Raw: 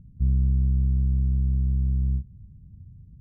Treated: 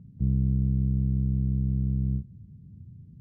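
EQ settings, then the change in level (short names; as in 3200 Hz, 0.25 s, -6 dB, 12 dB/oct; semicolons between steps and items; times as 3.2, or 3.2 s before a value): HPF 130 Hz 12 dB/oct; air absorption 110 m; +5.5 dB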